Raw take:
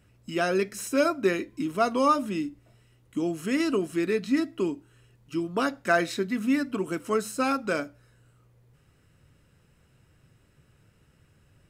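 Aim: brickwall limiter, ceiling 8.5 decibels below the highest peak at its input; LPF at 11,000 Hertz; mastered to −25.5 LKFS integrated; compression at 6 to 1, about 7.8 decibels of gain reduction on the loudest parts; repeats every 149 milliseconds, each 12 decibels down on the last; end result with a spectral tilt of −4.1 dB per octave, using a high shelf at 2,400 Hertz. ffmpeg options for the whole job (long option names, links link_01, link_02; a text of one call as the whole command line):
ffmpeg -i in.wav -af "lowpass=11000,highshelf=frequency=2400:gain=4.5,acompressor=threshold=-25dB:ratio=6,alimiter=limit=-23dB:level=0:latency=1,aecho=1:1:149|298|447:0.251|0.0628|0.0157,volume=7.5dB" out.wav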